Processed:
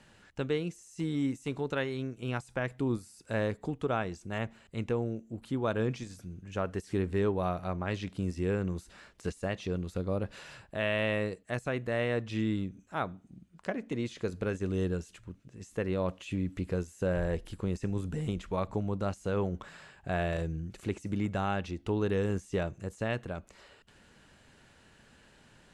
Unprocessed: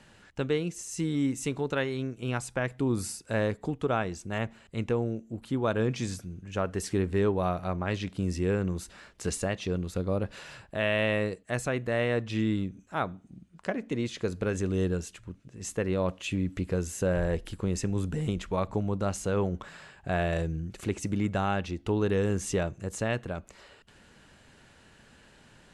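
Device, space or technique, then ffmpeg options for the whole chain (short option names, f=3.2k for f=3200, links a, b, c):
de-esser from a sidechain: -filter_complex "[0:a]asplit=2[a][b];[b]highpass=f=6.4k:w=0.5412,highpass=f=6.4k:w=1.3066,apad=whole_len=1135074[c];[a][c]sidechaincompress=threshold=-50dB:ratio=16:attack=1.3:release=24,volume=-3dB"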